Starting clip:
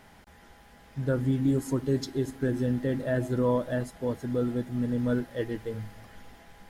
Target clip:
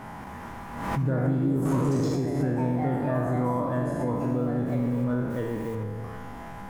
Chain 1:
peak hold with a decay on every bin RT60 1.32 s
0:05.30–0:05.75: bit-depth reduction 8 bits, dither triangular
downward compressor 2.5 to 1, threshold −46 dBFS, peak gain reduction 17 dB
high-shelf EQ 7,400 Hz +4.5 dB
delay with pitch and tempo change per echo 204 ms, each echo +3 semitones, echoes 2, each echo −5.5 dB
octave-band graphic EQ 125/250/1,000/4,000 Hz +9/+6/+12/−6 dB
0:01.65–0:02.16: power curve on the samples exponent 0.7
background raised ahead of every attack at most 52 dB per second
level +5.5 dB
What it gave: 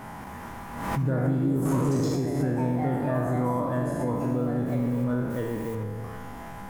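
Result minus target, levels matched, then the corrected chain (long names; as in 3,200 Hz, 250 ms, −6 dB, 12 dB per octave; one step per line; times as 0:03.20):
8,000 Hz band +3.5 dB
peak hold with a decay on every bin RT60 1.32 s
0:05.30–0:05.75: bit-depth reduction 8 bits, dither triangular
downward compressor 2.5 to 1, threshold −46 dBFS, peak gain reduction 17 dB
high-shelf EQ 7,400 Hz −3 dB
delay with pitch and tempo change per echo 204 ms, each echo +3 semitones, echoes 2, each echo −5.5 dB
octave-band graphic EQ 125/250/1,000/4,000 Hz +9/+6/+12/−6 dB
0:01.65–0:02.16: power curve on the samples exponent 0.7
background raised ahead of every attack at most 52 dB per second
level +5.5 dB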